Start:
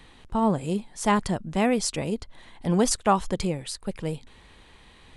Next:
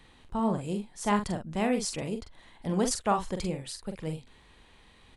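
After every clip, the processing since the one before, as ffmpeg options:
-filter_complex "[0:a]asplit=2[a][b];[b]adelay=44,volume=-6.5dB[c];[a][c]amix=inputs=2:normalize=0,volume=-6dB"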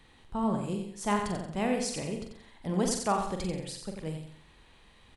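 -af "aecho=1:1:90|180|270|360:0.473|0.18|0.0683|0.026,volume=-2dB"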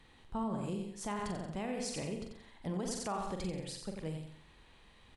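-af "highshelf=f=9.6k:g=-4.5,alimiter=level_in=1.5dB:limit=-24dB:level=0:latency=1:release=128,volume=-1.5dB,volume=-2.5dB"

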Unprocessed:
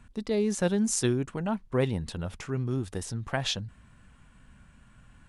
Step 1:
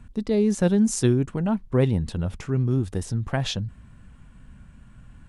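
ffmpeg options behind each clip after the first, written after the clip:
-af "lowshelf=f=420:g=9"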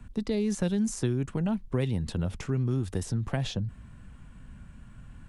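-filter_complex "[0:a]acrossover=split=140|790|2000[a][b][c][d];[a]acompressor=threshold=-32dB:ratio=4[e];[b]acompressor=threshold=-29dB:ratio=4[f];[c]acompressor=threshold=-48dB:ratio=4[g];[d]acompressor=threshold=-38dB:ratio=4[h];[e][f][g][h]amix=inputs=4:normalize=0"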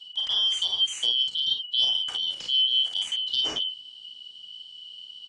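-af "afftfilt=real='real(if(lt(b,272),68*(eq(floor(b/68),0)*2+eq(floor(b/68),1)*3+eq(floor(b/68),2)*0+eq(floor(b/68),3)*1)+mod(b,68),b),0)':imag='imag(if(lt(b,272),68*(eq(floor(b/68),0)*2+eq(floor(b/68),1)*3+eq(floor(b/68),2)*0+eq(floor(b/68),3)*1)+mod(b,68),b),0)':win_size=2048:overlap=0.75,lowpass=f=8.6k:w=0.5412,lowpass=f=8.6k:w=1.3066,aecho=1:1:35|51:0.531|0.631"

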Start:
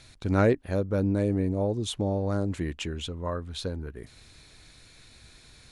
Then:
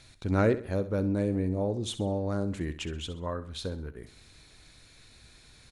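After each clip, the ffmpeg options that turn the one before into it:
-af "aecho=1:1:65|130|195|260:0.211|0.0803|0.0305|0.0116,volume=-2.5dB"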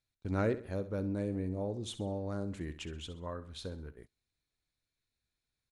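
-af "agate=range=-26dB:threshold=-42dB:ratio=16:detection=peak,volume=-7dB"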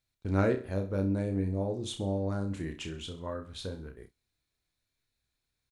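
-af "aecho=1:1:31|62:0.501|0.126,volume=3dB"

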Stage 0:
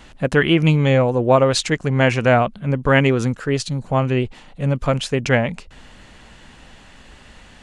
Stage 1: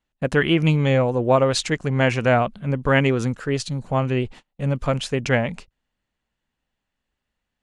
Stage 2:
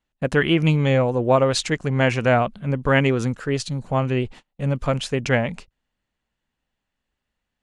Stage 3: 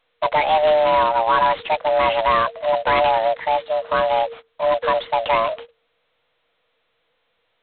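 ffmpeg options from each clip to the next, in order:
-af "agate=range=-33dB:threshold=-35dB:ratio=16:detection=peak,volume=-3dB"
-af anull
-filter_complex "[0:a]afreqshift=450,asplit=2[a][b];[b]highpass=f=720:p=1,volume=20dB,asoftclip=type=tanh:threshold=-1.5dB[c];[a][c]amix=inputs=2:normalize=0,lowpass=f=1.1k:p=1,volume=-6dB,volume=-4dB" -ar 8000 -c:a adpcm_g726 -b:a 16k

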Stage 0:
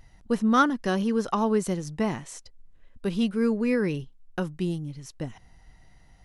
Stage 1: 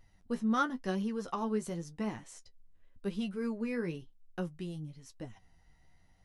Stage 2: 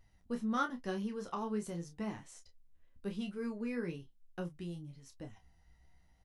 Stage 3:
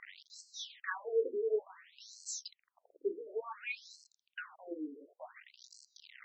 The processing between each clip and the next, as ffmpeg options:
-af "flanger=delay=9.3:depth=4.4:regen=33:speed=0.95:shape=triangular,volume=-6dB"
-filter_complex "[0:a]equalizer=f=60:t=o:w=0.28:g=12,asplit=2[a][b];[b]adelay=29,volume=-8dB[c];[a][c]amix=inputs=2:normalize=0,volume=-4dB"
-af "aeval=exprs='val(0)+0.5*0.00398*sgn(val(0))':c=same,tremolo=f=0.84:d=0.39,afftfilt=real='re*between(b*sr/1024,360*pow(5900/360,0.5+0.5*sin(2*PI*0.56*pts/sr))/1.41,360*pow(5900/360,0.5+0.5*sin(2*PI*0.56*pts/sr))*1.41)':imag='im*between(b*sr/1024,360*pow(5900/360,0.5+0.5*sin(2*PI*0.56*pts/sr))/1.41,360*pow(5900/360,0.5+0.5*sin(2*PI*0.56*pts/sr))*1.41)':win_size=1024:overlap=0.75,volume=12dB"

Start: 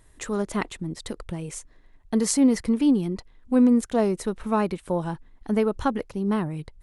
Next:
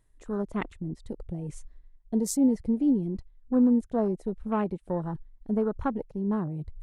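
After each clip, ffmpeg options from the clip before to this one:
-af "afwtdn=0.0251,lowshelf=f=270:g=4.5,areverse,acompressor=mode=upward:threshold=-25dB:ratio=2.5,areverse,volume=-6dB"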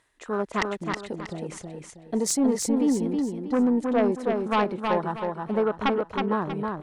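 -filter_complex "[0:a]bandpass=f=2.2k:t=q:w=0.55:csg=0,aeval=exprs='0.112*sin(PI/2*2.51*val(0)/0.112)':c=same,asplit=2[a][b];[b]aecho=0:1:319|638|957|1276:0.631|0.215|0.0729|0.0248[c];[a][c]amix=inputs=2:normalize=0,volume=2.5dB"

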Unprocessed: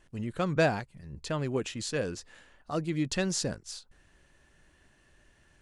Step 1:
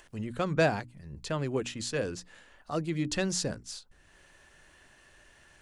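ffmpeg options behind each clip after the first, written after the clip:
-filter_complex "[0:a]bandreject=f=60:t=h:w=6,bandreject=f=120:t=h:w=6,bandreject=f=180:t=h:w=6,bandreject=f=240:t=h:w=6,bandreject=f=300:t=h:w=6,acrossover=split=470[a][b];[b]acompressor=mode=upward:threshold=-51dB:ratio=2.5[c];[a][c]amix=inputs=2:normalize=0"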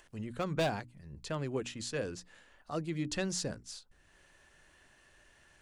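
-af "aeval=exprs='0.119*(abs(mod(val(0)/0.119+3,4)-2)-1)':c=same,volume=-4.5dB"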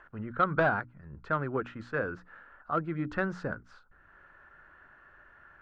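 -af "lowpass=f=1.4k:t=q:w=6.2,aeval=exprs='0.178*(cos(1*acos(clip(val(0)/0.178,-1,1)))-cos(1*PI/2))+0.0158*(cos(3*acos(clip(val(0)/0.178,-1,1)))-cos(3*PI/2))':c=same,volume=4.5dB"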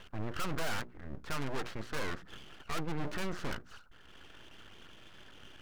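-af "aeval=exprs='(tanh(79.4*val(0)+0.6)-tanh(0.6))/79.4':c=same,aeval=exprs='abs(val(0))':c=same,volume=7.5dB"

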